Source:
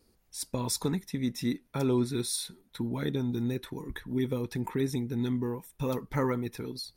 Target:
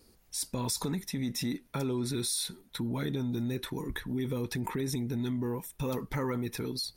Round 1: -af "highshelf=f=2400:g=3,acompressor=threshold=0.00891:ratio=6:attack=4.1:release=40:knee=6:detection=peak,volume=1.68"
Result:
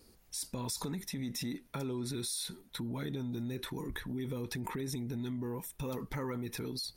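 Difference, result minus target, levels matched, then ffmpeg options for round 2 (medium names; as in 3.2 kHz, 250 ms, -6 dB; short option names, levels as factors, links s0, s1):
compression: peak gain reduction +5.5 dB
-af "highshelf=f=2400:g=3,acompressor=threshold=0.0188:ratio=6:attack=4.1:release=40:knee=6:detection=peak,volume=1.68"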